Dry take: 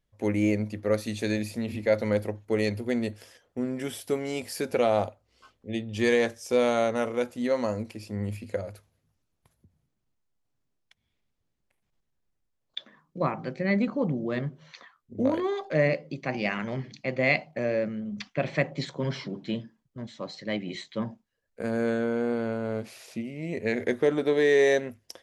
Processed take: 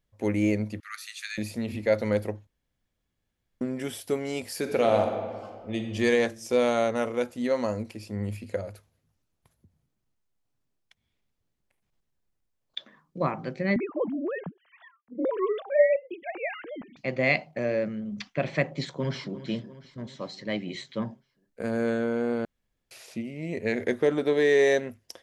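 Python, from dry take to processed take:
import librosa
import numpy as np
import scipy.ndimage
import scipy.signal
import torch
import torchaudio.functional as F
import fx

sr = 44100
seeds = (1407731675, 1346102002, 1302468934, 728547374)

y = fx.steep_highpass(x, sr, hz=1200.0, slope=72, at=(0.8, 1.38))
y = fx.reverb_throw(y, sr, start_s=4.58, length_s=1.27, rt60_s=1.9, drr_db=4.0)
y = fx.sine_speech(y, sr, at=(13.76, 16.97))
y = fx.echo_throw(y, sr, start_s=18.79, length_s=0.63, ms=350, feedback_pct=60, wet_db=-14.5)
y = fx.edit(y, sr, fx.room_tone_fill(start_s=2.47, length_s=1.14),
    fx.room_tone_fill(start_s=22.45, length_s=0.46), tone=tone)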